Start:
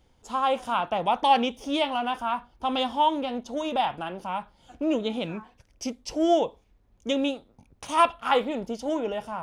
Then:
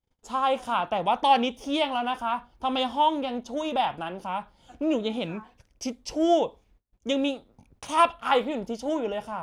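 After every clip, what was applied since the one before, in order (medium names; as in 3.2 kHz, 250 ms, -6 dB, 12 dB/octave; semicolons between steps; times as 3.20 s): gate -59 dBFS, range -27 dB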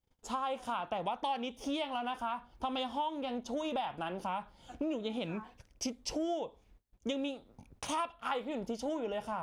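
compression 6:1, threshold -33 dBFS, peak gain reduction 17.5 dB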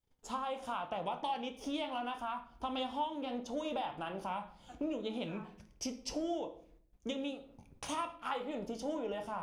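simulated room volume 83 m³, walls mixed, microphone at 0.33 m; trim -3 dB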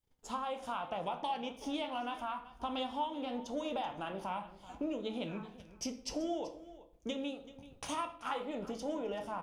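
delay 382 ms -17 dB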